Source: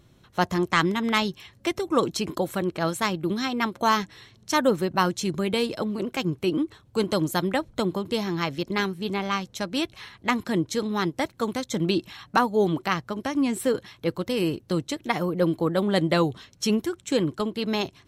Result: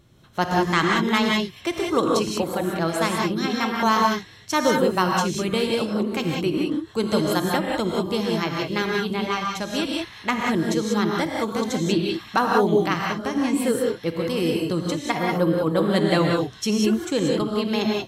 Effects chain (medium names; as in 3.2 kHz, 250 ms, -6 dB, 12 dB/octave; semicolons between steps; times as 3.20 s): gated-style reverb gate 210 ms rising, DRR -0.5 dB